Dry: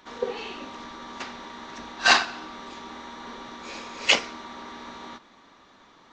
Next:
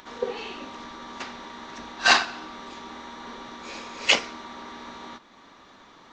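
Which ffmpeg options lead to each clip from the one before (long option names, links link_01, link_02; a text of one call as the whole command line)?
ffmpeg -i in.wav -af "acompressor=mode=upward:threshold=-45dB:ratio=2.5" out.wav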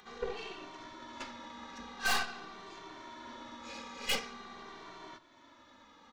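ffmpeg -i in.wav -filter_complex "[0:a]aeval=exprs='(tanh(15.8*val(0)+0.7)-tanh(0.7))/15.8':channel_layout=same,asplit=2[link_01][link_02];[link_02]adelay=2.1,afreqshift=-0.46[link_03];[link_01][link_03]amix=inputs=2:normalize=1,volume=-1dB" out.wav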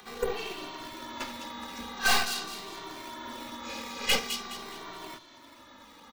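ffmpeg -i in.wav -filter_complex "[0:a]acrossover=split=110|1500|2500[link_01][link_02][link_03][link_04];[link_02]acrusher=samples=8:mix=1:aa=0.000001:lfo=1:lforange=12.8:lforate=2.4[link_05];[link_04]aecho=1:1:209|418|627|836:0.562|0.191|0.065|0.0221[link_06];[link_01][link_05][link_03][link_06]amix=inputs=4:normalize=0,volume=7dB" out.wav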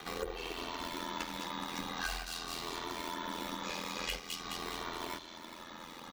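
ffmpeg -i in.wav -af "acompressor=threshold=-40dB:ratio=10,aeval=exprs='val(0)*sin(2*PI*42*n/s)':channel_layout=same,volume=7dB" out.wav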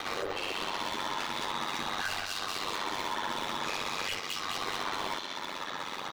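ffmpeg -i in.wav -filter_complex "[0:a]asplit=2[link_01][link_02];[link_02]highpass=frequency=720:poles=1,volume=25dB,asoftclip=type=tanh:threshold=-22.5dB[link_03];[link_01][link_03]amix=inputs=2:normalize=0,lowpass=frequency=4000:poles=1,volume=-6dB,aeval=exprs='val(0)*sin(2*PI*50*n/s)':channel_layout=same" out.wav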